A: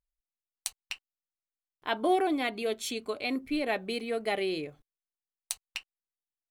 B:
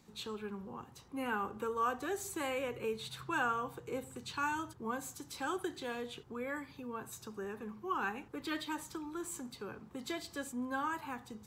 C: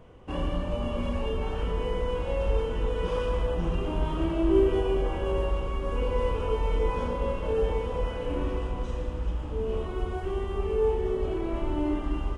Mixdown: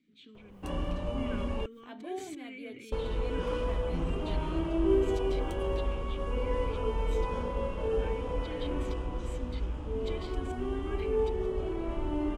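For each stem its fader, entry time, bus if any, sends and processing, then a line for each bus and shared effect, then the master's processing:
-17.5 dB, 0.00 s, no send, bass shelf 480 Hz +11 dB; flange 0.34 Hz, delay 8.8 ms, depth 8.5 ms, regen +71%; swell ahead of each attack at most 150 dB/s
+2.0 dB, 0.00 s, no send, vowel filter i; decay stretcher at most 24 dB/s
-4.0 dB, 0.35 s, muted 1.66–2.92 s, no send, none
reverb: none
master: none

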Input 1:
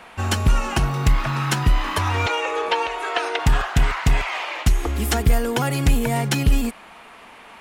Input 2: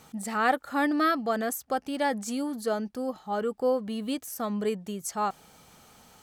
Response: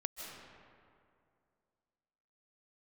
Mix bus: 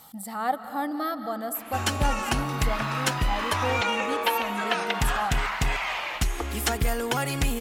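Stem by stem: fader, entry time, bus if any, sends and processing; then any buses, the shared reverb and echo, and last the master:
-2.5 dB, 1.55 s, send -22 dB, bass shelf 370 Hz -7.5 dB
-7.0 dB, 0.00 s, send -4 dB, graphic EQ with 31 bands 400 Hz -11 dB, 800 Hz +5 dB, 1.6 kHz -6 dB, 2.5 kHz -12 dB, 6.3 kHz -10 dB, 12.5 kHz +10 dB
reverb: on, RT60 2.4 s, pre-delay 115 ms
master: tape noise reduction on one side only encoder only

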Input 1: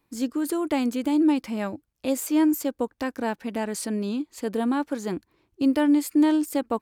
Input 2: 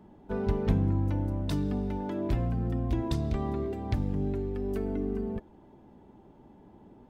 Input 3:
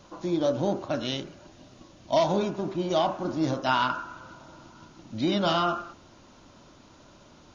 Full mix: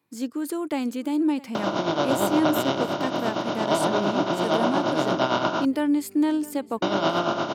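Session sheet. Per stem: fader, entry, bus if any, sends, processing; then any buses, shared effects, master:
-2.5 dB, 0.00 s, no send, echo send -20.5 dB, none
-17.5 dB, 1.40 s, no send, no echo send, none
-4.0 dB, 1.55 s, muted 5.65–6.82 s, no send, no echo send, spectral levelling over time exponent 0.2; tremolo 8.7 Hz, depth 61%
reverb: none
echo: delay 658 ms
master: high-pass 100 Hz 24 dB/octave

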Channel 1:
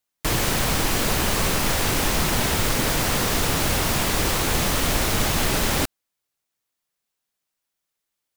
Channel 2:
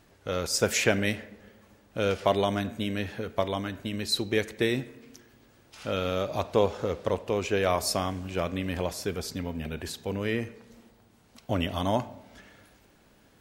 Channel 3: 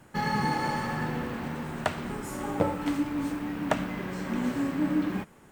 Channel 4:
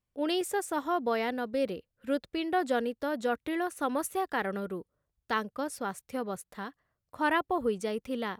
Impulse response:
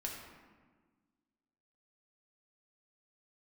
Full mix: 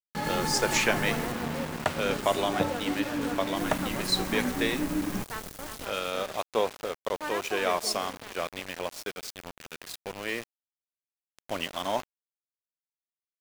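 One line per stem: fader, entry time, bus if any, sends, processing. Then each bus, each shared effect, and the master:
-7.5 dB, 0.00 s, muted 1.32–3.56 s, send -19.5 dB, no echo send, peaking EQ 2.1 kHz -12.5 dB 1.8 oct; auto duck -12 dB, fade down 0.25 s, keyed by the fourth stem
-0.5 dB, 0.00 s, send -21 dB, no echo send, frequency weighting A
-1.5 dB, 0.00 s, no send, no echo send, gain riding within 3 dB 0.5 s
-8.5 dB, 0.00 s, send -11 dB, echo send -5 dB, bass shelf 150 Hz -10 dB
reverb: on, RT60 1.5 s, pre-delay 4 ms
echo: delay 354 ms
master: small samples zeroed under -34 dBFS

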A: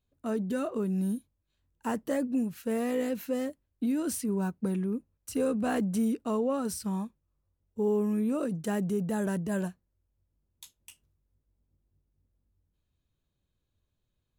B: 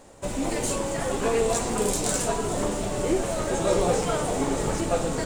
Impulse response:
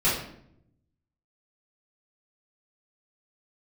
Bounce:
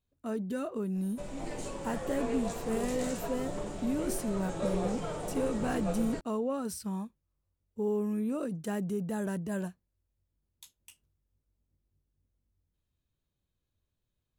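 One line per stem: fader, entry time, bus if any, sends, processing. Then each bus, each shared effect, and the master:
-3.5 dB, 0.00 s, no send, none
-13.5 dB, 0.95 s, send -18.5 dB, treble shelf 7.5 kHz -9.5 dB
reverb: on, RT60 0.70 s, pre-delay 3 ms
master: none

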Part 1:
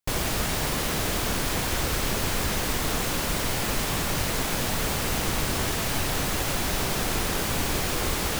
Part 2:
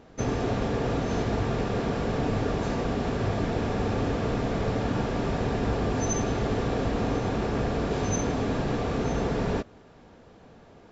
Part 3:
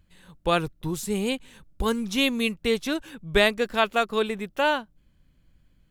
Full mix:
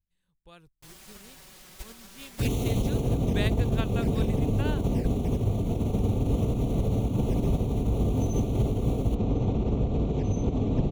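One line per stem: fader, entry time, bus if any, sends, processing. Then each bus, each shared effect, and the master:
2.62 s -6 dB -> 3.26 s -19 dB, 0.75 s, bus A, no send, none
+0.5 dB, 2.20 s, bus A, no send, high-pass 60 Hz 6 dB/octave; tilt EQ -4 dB/octave
-14.5 dB, 0.00 s, no bus, no send, bass shelf 180 Hz +11.5 dB
bus A: 0.0 dB, touch-sensitive flanger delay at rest 10.6 ms, full sweep at -14.5 dBFS; peak limiter -15 dBFS, peak gain reduction 9.5 dB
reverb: none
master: treble shelf 2.1 kHz +7.5 dB; upward expansion 2.5:1, over -31 dBFS

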